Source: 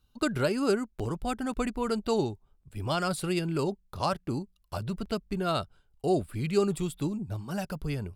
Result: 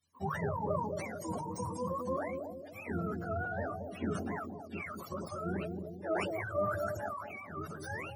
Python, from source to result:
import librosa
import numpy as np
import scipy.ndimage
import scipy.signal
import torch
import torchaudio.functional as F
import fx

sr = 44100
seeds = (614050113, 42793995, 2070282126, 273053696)

y = fx.octave_mirror(x, sr, pivot_hz=490.0)
y = fx.echo_bbd(y, sr, ms=223, stages=1024, feedback_pct=45, wet_db=-4.5)
y = fx.sustainer(y, sr, db_per_s=38.0)
y = y * librosa.db_to_amplitude(-7.0)